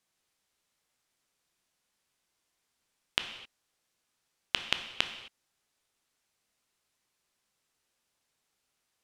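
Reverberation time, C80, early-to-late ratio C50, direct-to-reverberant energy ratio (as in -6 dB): not exponential, 11.0 dB, 9.5 dB, 7.0 dB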